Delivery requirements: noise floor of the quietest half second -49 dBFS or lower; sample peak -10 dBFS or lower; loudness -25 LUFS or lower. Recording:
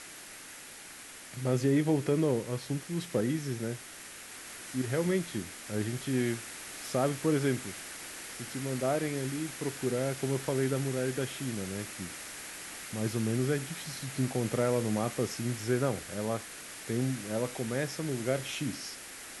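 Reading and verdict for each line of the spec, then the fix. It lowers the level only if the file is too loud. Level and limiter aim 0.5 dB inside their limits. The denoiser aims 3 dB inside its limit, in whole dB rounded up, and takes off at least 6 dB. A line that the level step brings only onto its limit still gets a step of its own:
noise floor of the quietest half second -48 dBFS: fail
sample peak -15.0 dBFS: pass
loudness -32.5 LUFS: pass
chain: noise reduction 6 dB, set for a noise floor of -48 dBFS

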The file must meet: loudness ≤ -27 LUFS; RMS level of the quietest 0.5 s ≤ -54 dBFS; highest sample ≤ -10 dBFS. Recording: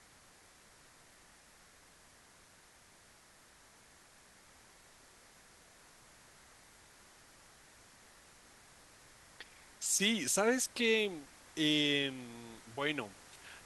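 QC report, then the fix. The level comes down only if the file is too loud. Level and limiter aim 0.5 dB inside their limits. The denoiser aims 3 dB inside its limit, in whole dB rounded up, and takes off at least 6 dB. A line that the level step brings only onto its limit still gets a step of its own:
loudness -32.5 LUFS: pass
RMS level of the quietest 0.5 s -62 dBFS: pass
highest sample -17.0 dBFS: pass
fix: none needed

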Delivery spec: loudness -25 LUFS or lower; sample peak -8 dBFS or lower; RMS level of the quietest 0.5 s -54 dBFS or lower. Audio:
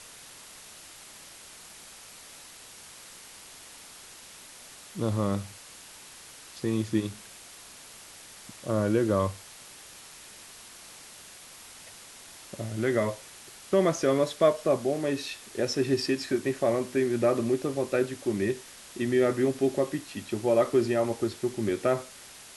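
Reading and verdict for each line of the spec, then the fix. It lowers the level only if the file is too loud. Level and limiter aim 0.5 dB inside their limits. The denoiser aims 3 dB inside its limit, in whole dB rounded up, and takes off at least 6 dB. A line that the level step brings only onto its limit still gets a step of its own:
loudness -28.0 LUFS: pass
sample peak -10.5 dBFS: pass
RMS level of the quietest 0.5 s -48 dBFS: fail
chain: noise reduction 9 dB, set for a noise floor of -48 dBFS

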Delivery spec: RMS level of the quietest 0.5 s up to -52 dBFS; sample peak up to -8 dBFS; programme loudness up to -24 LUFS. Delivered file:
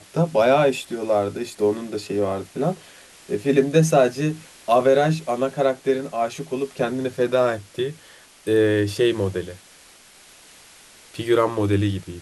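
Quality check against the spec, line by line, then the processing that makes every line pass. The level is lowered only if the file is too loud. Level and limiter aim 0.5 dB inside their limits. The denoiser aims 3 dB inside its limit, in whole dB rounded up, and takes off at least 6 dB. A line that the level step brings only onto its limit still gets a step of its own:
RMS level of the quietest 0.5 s -49 dBFS: fail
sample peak -5.0 dBFS: fail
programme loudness -21.5 LUFS: fail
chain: noise reduction 6 dB, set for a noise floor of -49 dBFS; trim -3 dB; peak limiter -8.5 dBFS

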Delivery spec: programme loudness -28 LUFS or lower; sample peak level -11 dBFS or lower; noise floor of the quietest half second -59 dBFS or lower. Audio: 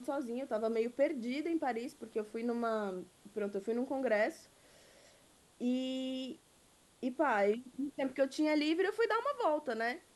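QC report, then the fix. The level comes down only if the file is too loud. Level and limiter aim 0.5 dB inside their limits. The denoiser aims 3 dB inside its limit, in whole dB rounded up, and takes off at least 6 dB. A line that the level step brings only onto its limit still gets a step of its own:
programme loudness -35.5 LUFS: pass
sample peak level -19.5 dBFS: pass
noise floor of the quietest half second -66 dBFS: pass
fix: none needed

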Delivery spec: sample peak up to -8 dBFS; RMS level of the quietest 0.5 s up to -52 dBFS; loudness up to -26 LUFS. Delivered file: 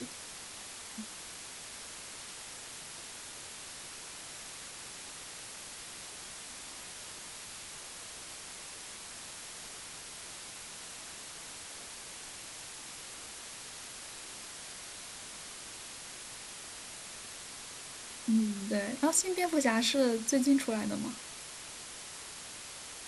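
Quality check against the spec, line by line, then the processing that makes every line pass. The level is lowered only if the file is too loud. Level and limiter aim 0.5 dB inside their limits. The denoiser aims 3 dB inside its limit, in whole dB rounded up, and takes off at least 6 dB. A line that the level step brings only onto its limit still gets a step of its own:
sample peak -12.5 dBFS: pass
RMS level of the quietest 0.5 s -46 dBFS: fail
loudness -37.5 LUFS: pass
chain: noise reduction 9 dB, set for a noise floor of -46 dBFS

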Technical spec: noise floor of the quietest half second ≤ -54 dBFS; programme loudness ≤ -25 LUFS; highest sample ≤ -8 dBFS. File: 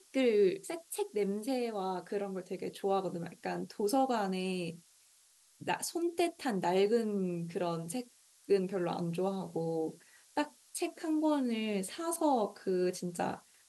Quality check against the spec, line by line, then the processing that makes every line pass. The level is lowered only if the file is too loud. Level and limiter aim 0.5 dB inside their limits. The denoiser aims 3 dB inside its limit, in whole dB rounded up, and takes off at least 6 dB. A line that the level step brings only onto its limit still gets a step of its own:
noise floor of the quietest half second -66 dBFS: pass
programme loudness -34.5 LUFS: pass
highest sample -18.5 dBFS: pass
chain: none needed

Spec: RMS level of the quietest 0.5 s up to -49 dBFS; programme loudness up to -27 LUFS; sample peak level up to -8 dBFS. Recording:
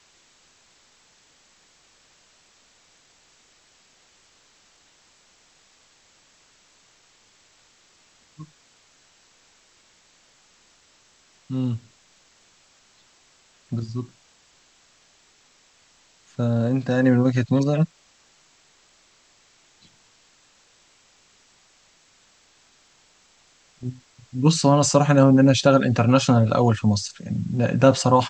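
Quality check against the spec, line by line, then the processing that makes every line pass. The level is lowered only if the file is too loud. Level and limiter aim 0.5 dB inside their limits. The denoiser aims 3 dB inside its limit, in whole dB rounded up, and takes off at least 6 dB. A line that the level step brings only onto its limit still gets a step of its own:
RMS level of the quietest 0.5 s -59 dBFS: pass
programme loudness -20.0 LUFS: fail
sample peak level -2.5 dBFS: fail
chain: trim -7.5 dB

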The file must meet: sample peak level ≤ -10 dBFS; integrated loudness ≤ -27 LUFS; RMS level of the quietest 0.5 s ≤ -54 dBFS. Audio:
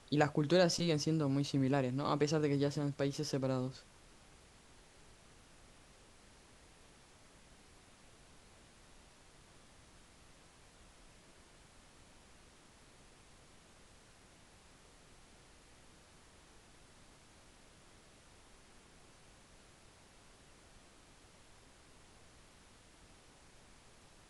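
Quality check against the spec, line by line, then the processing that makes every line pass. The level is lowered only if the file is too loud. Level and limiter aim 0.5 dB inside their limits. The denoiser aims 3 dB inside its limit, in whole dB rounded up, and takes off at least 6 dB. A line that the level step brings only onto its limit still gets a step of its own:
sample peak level -16.5 dBFS: pass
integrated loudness -34.0 LUFS: pass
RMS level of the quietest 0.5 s -62 dBFS: pass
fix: none needed

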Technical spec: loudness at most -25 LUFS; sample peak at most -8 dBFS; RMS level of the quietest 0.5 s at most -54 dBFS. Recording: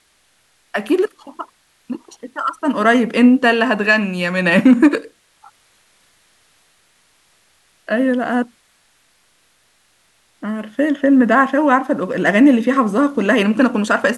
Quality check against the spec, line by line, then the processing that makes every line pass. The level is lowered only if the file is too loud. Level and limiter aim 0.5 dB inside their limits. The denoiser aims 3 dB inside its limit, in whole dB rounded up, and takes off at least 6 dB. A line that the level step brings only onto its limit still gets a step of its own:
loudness -15.5 LUFS: fail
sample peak -2.0 dBFS: fail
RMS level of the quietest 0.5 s -59 dBFS: pass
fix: trim -10 dB

